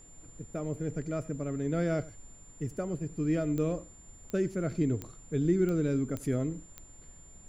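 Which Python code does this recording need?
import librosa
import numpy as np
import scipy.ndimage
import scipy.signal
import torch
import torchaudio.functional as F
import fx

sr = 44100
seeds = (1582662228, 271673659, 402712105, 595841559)

y = fx.fix_declick_ar(x, sr, threshold=10.0)
y = fx.notch(y, sr, hz=7200.0, q=30.0)
y = fx.noise_reduce(y, sr, print_start_s=6.85, print_end_s=7.35, reduce_db=24.0)
y = fx.fix_echo_inverse(y, sr, delay_ms=90, level_db=-20.5)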